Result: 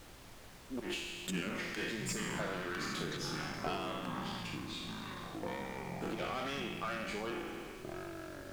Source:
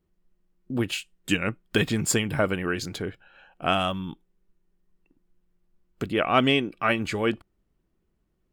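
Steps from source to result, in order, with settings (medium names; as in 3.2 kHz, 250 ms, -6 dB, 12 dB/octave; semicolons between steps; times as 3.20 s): spectral sustain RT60 0.81 s; high-pass 210 Hz 24 dB/octave; valve stage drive 19 dB, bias 0.45; slow attack 137 ms; compression 10:1, threshold -45 dBFS, peak gain reduction 23.5 dB; ever faster or slower copies 280 ms, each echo -6 st, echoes 2; flange 1.4 Hz, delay 5 ms, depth 1.1 ms, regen +61%; added noise pink -65 dBFS; treble shelf 9.9 kHz -6.5 dB; trim +11.5 dB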